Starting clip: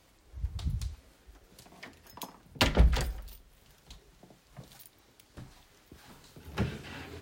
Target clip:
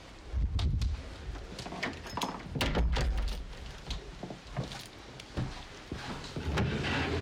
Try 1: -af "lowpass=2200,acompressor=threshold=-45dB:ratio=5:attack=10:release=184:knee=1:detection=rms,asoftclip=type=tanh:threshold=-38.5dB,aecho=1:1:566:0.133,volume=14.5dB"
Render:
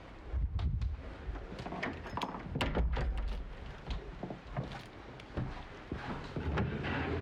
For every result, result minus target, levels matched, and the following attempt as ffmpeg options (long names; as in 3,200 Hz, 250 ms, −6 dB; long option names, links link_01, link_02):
downward compressor: peak gain reduction +5.5 dB; 4,000 Hz band −5.0 dB
-af "lowpass=2200,acompressor=threshold=-38dB:ratio=5:attack=10:release=184:knee=1:detection=rms,asoftclip=type=tanh:threshold=-38.5dB,aecho=1:1:566:0.133,volume=14.5dB"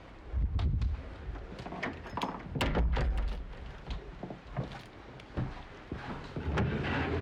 4,000 Hz band −5.5 dB
-af "lowpass=5200,acompressor=threshold=-38dB:ratio=5:attack=10:release=184:knee=1:detection=rms,asoftclip=type=tanh:threshold=-38.5dB,aecho=1:1:566:0.133,volume=14.5dB"